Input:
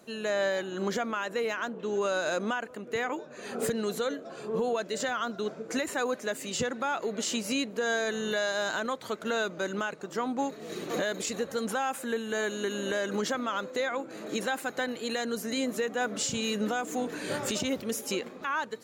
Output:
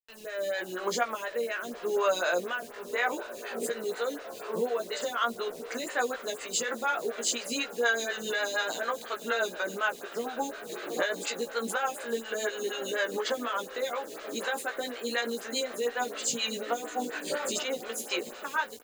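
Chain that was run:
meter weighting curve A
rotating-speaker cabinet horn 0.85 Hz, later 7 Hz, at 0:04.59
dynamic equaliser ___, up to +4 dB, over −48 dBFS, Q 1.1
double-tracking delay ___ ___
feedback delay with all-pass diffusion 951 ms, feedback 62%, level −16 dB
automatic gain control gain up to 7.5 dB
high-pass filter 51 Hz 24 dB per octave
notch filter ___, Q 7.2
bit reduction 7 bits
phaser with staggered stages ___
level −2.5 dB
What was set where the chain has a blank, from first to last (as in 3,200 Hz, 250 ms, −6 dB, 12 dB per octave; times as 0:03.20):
5,700 Hz, 17 ms, −3.5 dB, 5,600 Hz, 4.1 Hz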